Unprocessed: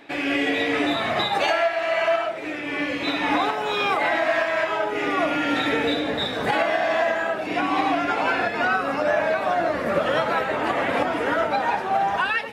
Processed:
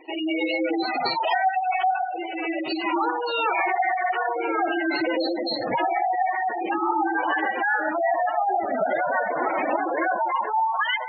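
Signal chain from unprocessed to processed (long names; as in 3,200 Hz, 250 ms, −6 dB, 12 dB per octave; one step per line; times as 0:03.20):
delay that swaps between a low-pass and a high-pass 152 ms, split 1,800 Hz, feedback 83%, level −10 dB
change of speed 1.13×
gate on every frequency bin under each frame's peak −10 dB strong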